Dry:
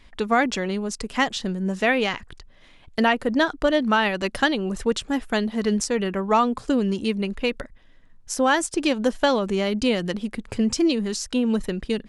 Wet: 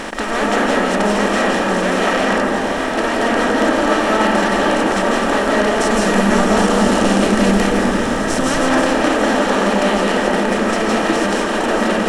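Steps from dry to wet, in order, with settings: spectral levelling over time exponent 0.2; 5.79–8.49 s: tone controls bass +8 dB, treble +6 dB; waveshaping leveller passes 1; reverberation RT60 2.6 s, pre-delay 123 ms, DRR -5.5 dB; trim -14 dB

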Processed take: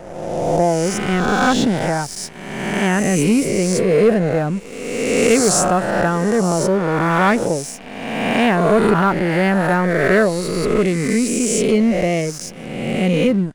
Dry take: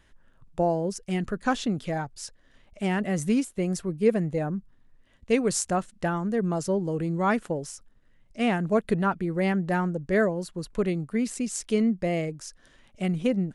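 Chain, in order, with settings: reverse spectral sustain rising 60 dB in 1.75 s; waveshaping leveller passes 2

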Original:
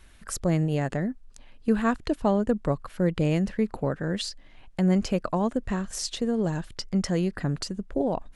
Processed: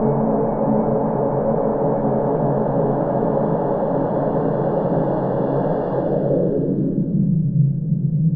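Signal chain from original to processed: Paulstretch 26×, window 1.00 s, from 3.77 s; low-pass sweep 820 Hz -> 150 Hz, 5.96–7.46 s; trim +7.5 dB

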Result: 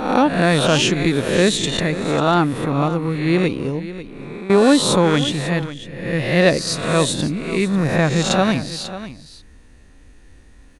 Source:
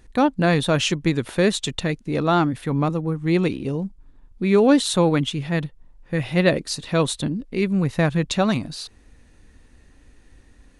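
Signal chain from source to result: reverse spectral sustain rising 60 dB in 0.83 s; 3.79–4.50 s: compression 6:1, threshold -32 dBFS, peak gain reduction 16 dB; on a send: delay 544 ms -14 dB; on the sum: trim +1.5 dB

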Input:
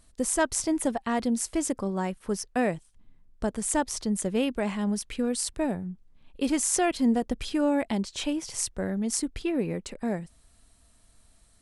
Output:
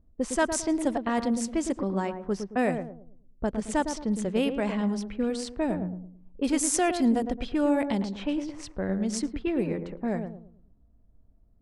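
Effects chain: filtered feedback delay 110 ms, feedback 38%, low-pass 930 Hz, level -6 dB; level-controlled noise filter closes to 390 Hz, open at -21 dBFS

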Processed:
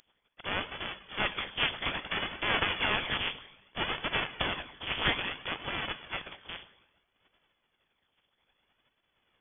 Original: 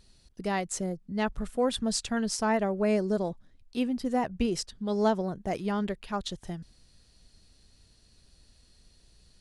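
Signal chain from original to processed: spectral contrast reduction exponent 0.12; tremolo 1.5 Hz, depth 29%; Schroeder reverb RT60 1.3 s, combs from 29 ms, DRR 7.5 dB; phaser 0.61 Hz, delay 3 ms, feedback 42%; power-law waveshaper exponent 1.4; frequency inversion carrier 3.4 kHz; trim +7.5 dB

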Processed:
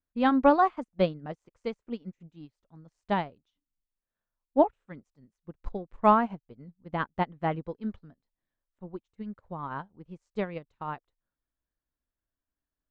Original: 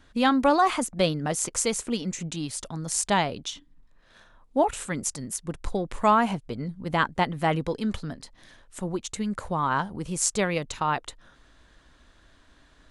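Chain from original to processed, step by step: tape spacing loss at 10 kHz 32 dB; upward expansion 2.5:1, over -44 dBFS; trim +4 dB

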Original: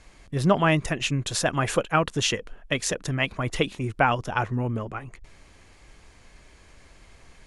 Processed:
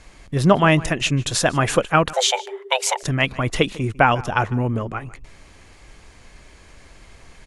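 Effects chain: echo from a far wall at 26 m, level -20 dB; 2.13–3.03 s: frequency shift +380 Hz; trim +5.5 dB

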